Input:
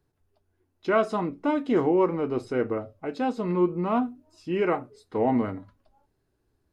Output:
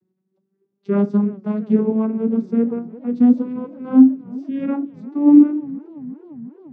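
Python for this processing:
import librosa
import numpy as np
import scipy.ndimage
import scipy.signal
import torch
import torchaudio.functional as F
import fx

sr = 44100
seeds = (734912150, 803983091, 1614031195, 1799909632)

y = fx.vocoder_glide(x, sr, note=54, semitones=10)
y = fx.low_shelf_res(y, sr, hz=430.0, db=9.0, q=1.5)
y = fx.echo_warbled(y, sr, ms=349, feedback_pct=74, rate_hz=2.8, cents=134, wet_db=-21.5)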